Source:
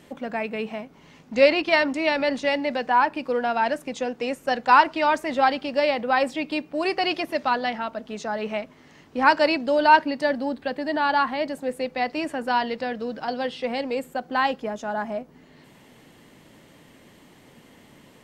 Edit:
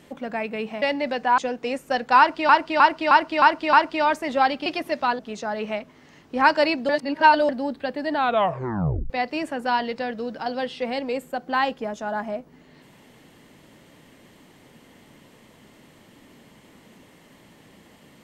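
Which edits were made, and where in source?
0.82–2.46 cut
3.02–3.95 cut
4.75–5.06 loop, 6 plays
5.68–7.09 cut
7.62–8.01 cut
9.71–10.31 reverse
10.97 tape stop 0.95 s

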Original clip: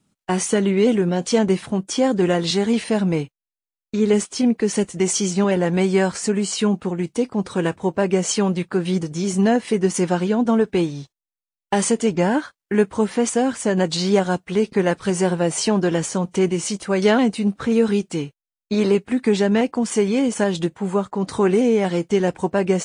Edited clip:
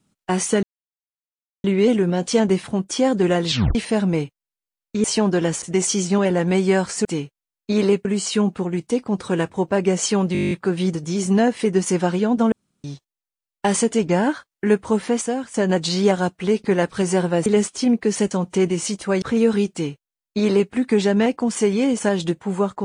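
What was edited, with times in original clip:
0.63 insert silence 1.01 s
2.48 tape stop 0.26 s
4.03–4.88 swap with 15.54–16.12
8.59 stutter 0.02 s, 10 plays
10.6–10.92 room tone
13.13–13.62 fade out, to -11.5 dB
17.03–17.57 cut
18.07–19.07 copy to 6.31

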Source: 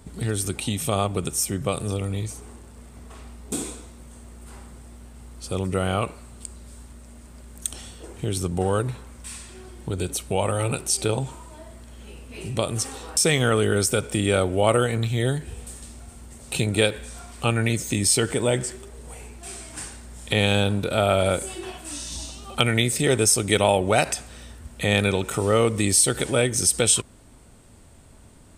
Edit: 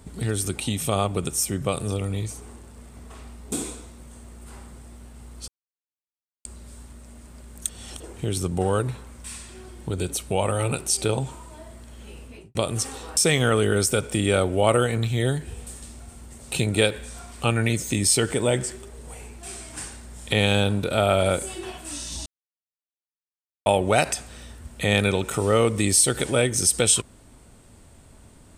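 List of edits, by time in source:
5.48–6.45 mute
7.69–8 reverse
12.23–12.55 studio fade out
22.26–23.66 mute

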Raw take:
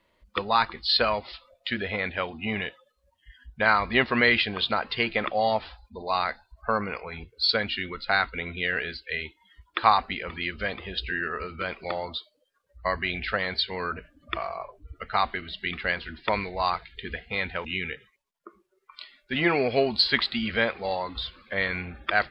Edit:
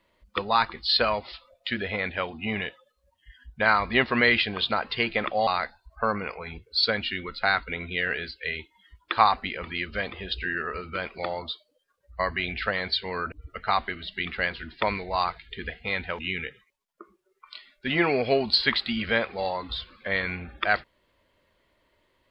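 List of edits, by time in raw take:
5.47–6.13 cut
13.98–14.78 cut

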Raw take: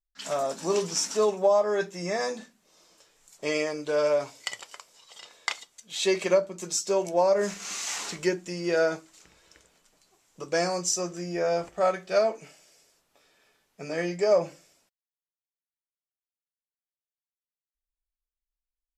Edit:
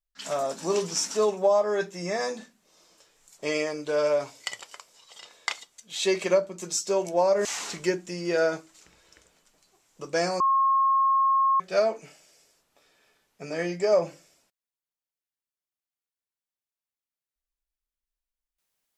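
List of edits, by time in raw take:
7.45–7.84 cut
10.79–11.99 bleep 1080 Hz -18.5 dBFS

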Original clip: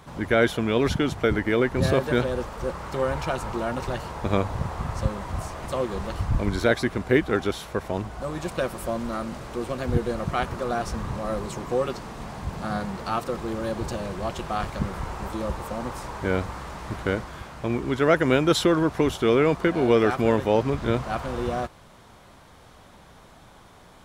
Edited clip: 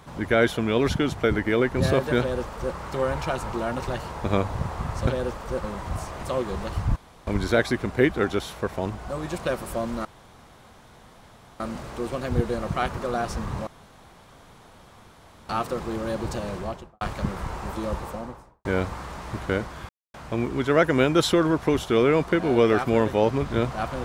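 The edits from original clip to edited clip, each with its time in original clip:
2.19–2.76 copy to 5.07
6.39 insert room tone 0.31 s
9.17 insert room tone 1.55 s
11.24–13.06 room tone
14.12–14.58 studio fade out
15.53–16.22 studio fade out
17.46 insert silence 0.25 s

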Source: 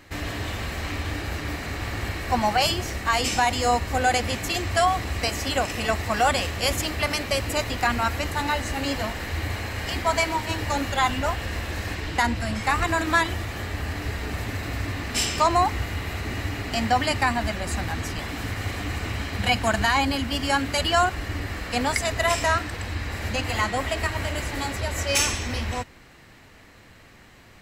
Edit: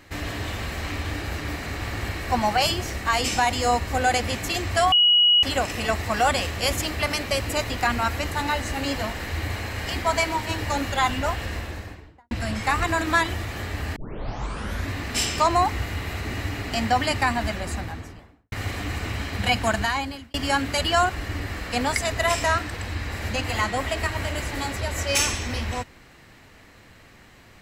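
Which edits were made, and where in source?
4.92–5.43 bleep 2910 Hz -13.5 dBFS
11.4–12.31 studio fade out
13.96 tape start 0.95 s
17.47–18.52 studio fade out
19.69–20.34 fade out

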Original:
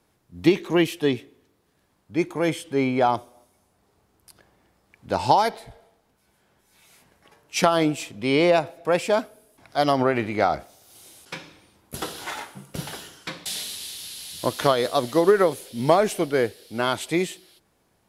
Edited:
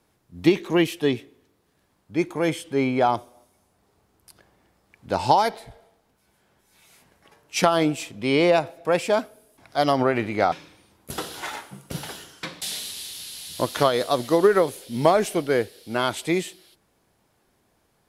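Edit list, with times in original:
10.52–11.36 cut

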